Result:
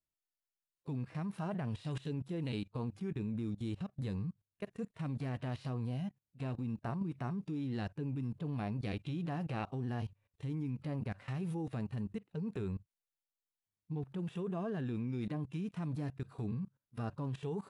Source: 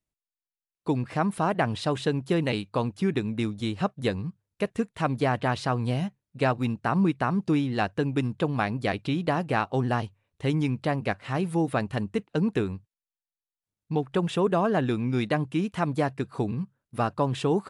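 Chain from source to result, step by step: 2.59–3.95 compressor 10:1, threshold -27 dBFS, peak gain reduction 8 dB; harmonic-percussive split percussive -17 dB; level quantiser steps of 20 dB; gain +3 dB

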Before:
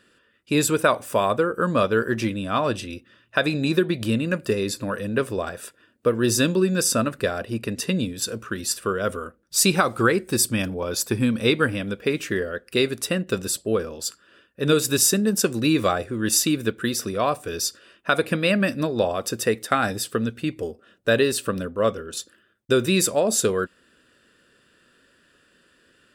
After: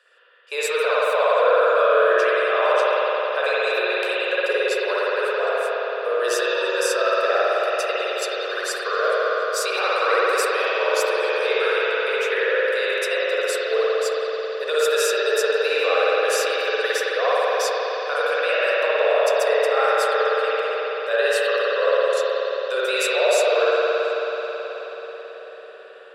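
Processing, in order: steep high-pass 440 Hz 72 dB/oct; high shelf 6800 Hz -10.5 dB; limiter -17.5 dBFS, peak gain reduction 11 dB; tape echo 0.71 s, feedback 73%, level -18 dB, low-pass 1400 Hz; reverb RT60 4.8 s, pre-delay 54 ms, DRR -9.5 dB

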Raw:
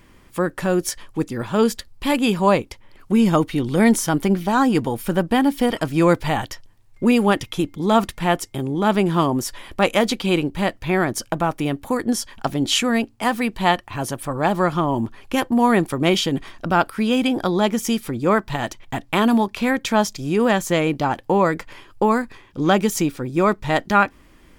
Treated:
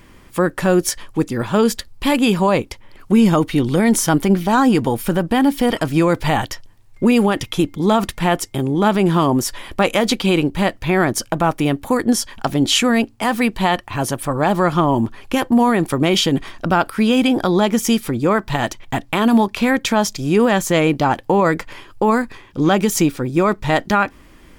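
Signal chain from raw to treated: limiter -10.5 dBFS, peak gain reduction 7 dB; gain +5 dB

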